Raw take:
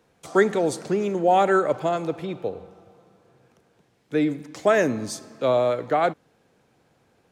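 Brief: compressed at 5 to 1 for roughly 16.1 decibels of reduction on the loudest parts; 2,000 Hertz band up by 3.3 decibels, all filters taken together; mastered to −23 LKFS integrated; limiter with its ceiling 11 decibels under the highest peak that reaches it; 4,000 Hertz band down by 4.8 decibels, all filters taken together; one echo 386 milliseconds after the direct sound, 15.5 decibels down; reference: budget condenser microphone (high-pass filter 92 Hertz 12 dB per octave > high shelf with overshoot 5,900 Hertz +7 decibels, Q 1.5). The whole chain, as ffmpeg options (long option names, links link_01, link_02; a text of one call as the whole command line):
ffmpeg -i in.wav -af "equalizer=frequency=2000:width_type=o:gain=6,equalizer=frequency=4000:width_type=o:gain=-6.5,acompressor=threshold=-32dB:ratio=5,alimiter=level_in=6.5dB:limit=-24dB:level=0:latency=1,volume=-6.5dB,highpass=92,highshelf=frequency=5900:width_type=q:width=1.5:gain=7,aecho=1:1:386:0.168,volume=16.5dB" out.wav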